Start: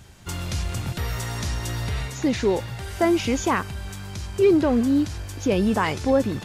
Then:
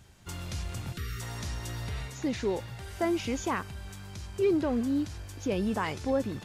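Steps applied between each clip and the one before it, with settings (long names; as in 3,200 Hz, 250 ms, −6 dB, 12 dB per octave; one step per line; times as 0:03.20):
time-frequency box erased 0:00.97–0:01.21, 460–1,100 Hz
level −8.5 dB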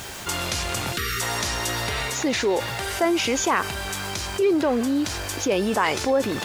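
bit reduction 11 bits
bass and treble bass −15 dB, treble 0 dB
envelope flattener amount 50%
level +7.5 dB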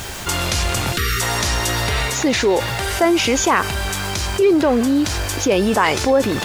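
low-shelf EQ 73 Hz +10.5 dB
level +5.5 dB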